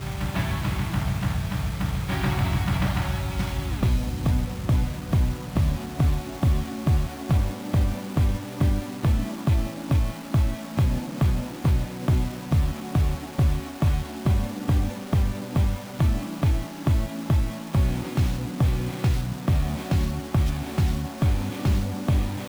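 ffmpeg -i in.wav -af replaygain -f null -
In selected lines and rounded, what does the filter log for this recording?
track_gain = +8.6 dB
track_peak = 0.156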